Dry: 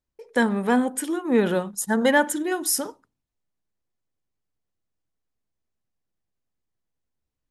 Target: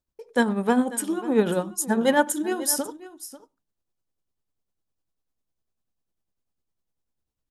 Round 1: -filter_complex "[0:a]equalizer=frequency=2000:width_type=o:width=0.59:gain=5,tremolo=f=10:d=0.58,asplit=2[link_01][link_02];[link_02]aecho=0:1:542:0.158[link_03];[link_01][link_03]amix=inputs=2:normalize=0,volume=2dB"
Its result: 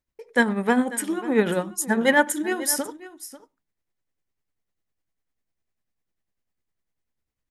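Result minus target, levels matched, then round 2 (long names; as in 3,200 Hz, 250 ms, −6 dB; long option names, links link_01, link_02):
2,000 Hz band +5.5 dB
-filter_complex "[0:a]equalizer=frequency=2000:width_type=o:width=0.59:gain=-6,tremolo=f=10:d=0.58,asplit=2[link_01][link_02];[link_02]aecho=0:1:542:0.158[link_03];[link_01][link_03]amix=inputs=2:normalize=0,volume=2dB"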